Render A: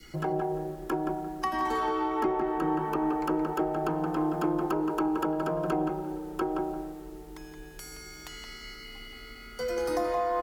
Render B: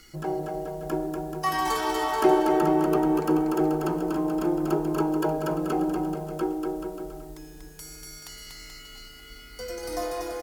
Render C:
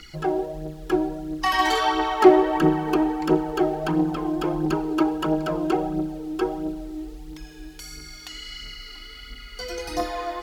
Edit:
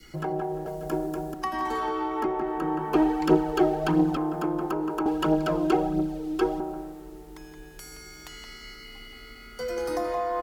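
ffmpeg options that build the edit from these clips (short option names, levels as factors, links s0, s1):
-filter_complex "[2:a]asplit=2[s0][s1];[0:a]asplit=4[s2][s3][s4][s5];[s2]atrim=end=0.662[s6];[1:a]atrim=start=0.658:end=1.342[s7];[s3]atrim=start=1.338:end=2.942[s8];[s0]atrim=start=2.938:end=4.172[s9];[s4]atrim=start=4.168:end=5.062[s10];[s1]atrim=start=5.058:end=6.602[s11];[s5]atrim=start=6.598[s12];[s6][s7]acrossfade=d=0.004:c1=hsin:c2=hsin[s13];[s13][s8]acrossfade=d=0.004:c1=hsin:c2=hsin[s14];[s14][s9]acrossfade=d=0.004:c1=hsin:c2=hsin[s15];[s15][s10]acrossfade=d=0.004:c1=hsin:c2=hsin[s16];[s16][s11]acrossfade=d=0.004:c1=hsin:c2=hsin[s17];[s17][s12]acrossfade=d=0.004:c1=hsin:c2=hsin"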